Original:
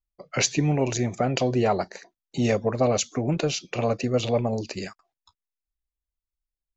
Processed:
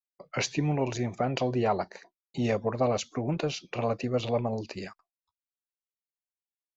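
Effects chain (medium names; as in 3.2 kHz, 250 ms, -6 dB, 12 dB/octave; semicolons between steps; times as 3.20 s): expander -46 dBFS; low-pass 5 kHz 12 dB/octave; peaking EQ 970 Hz +4.5 dB 0.66 oct; trim -5 dB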